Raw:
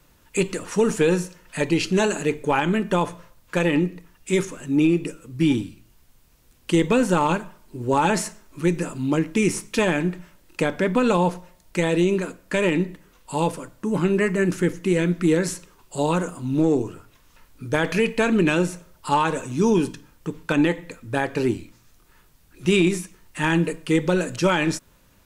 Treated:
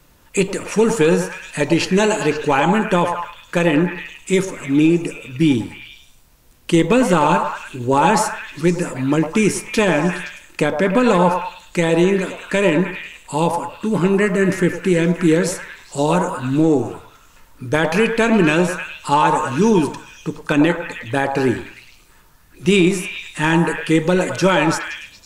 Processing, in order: delay with a stepping band-pass 0.104 s, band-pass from 760 Hz, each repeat 0.7 oct, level -1.5 dB; gain +4.5 dB

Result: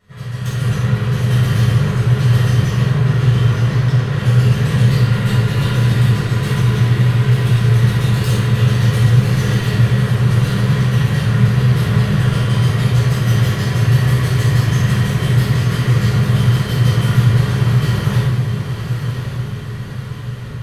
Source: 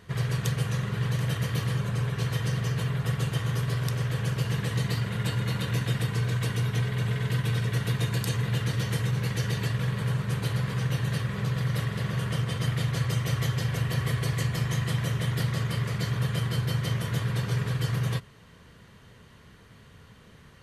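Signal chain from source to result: AGC gain up to 16 dB; soft clip -13 dBFS, distortion -12 dB; 2.79–4.18 air absorption 77 m; diffused feedback echo 1.062 s, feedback 48%, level -7 dB; shoebox room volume 630 m³, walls mixed, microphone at 6.6 m; gain -13.5 dB

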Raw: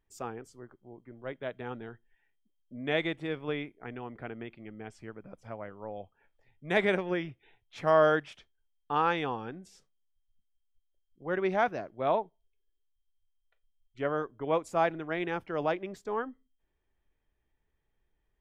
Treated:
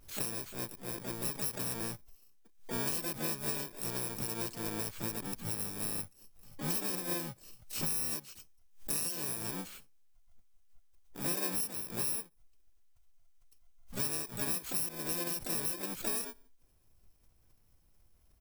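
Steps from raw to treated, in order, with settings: FFT order left unsorted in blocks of 64 samples; dynamic EQ 260 Hz, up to -6 dB, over -55 dBFS, Q 3.4; compressor 10:1, threshold -41 dBFS, peak gain reduction 23 dB; overloaded stage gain 33.5 dB; harmoniser +7 st -4 dB, +12 st -10 dB; backwards sustainer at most 140 dB/s; gain +8.5 dB

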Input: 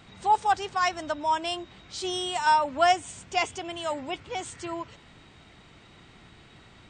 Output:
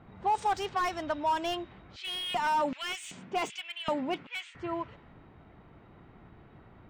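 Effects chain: low-pass opened by the level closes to 1100 Hz, open at -20 dBFS; limiter -19.5 dBFS, peak gain reduction 9.5 dB; 1.96–4.55 LFO high-pass square 1.3 Hz 200–2500 Hz; slew limiter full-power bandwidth 63 Hz

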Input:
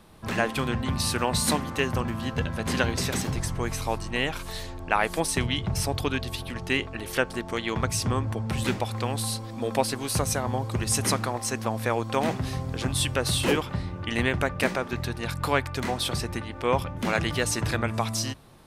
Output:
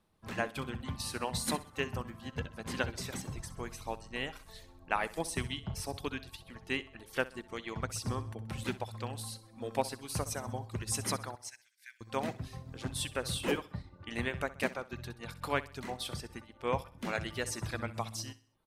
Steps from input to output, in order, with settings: reverb removal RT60 0.68 s; 11.35–12.01 rippled Chebyshev high-pass 1500 Hz, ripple 6 dB; feedback echo 64 ms, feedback 49%, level -13 dB; upward expander 1.5:1, over -47 dBFS; gain -6.5 dB

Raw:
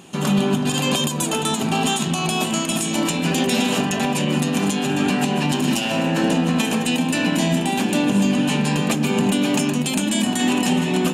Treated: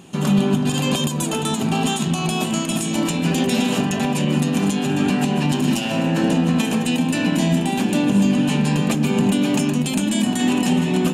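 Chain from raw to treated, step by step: low shelf 270 Hz +7 dB; gain -2.5 dB

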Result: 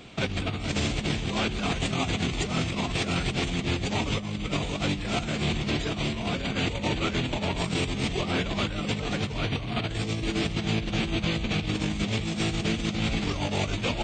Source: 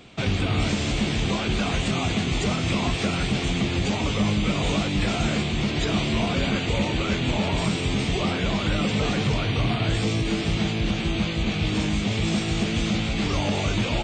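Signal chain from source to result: negative-ratio compressor -26 dBFS, ratio -0.5; gain -1.5 dB

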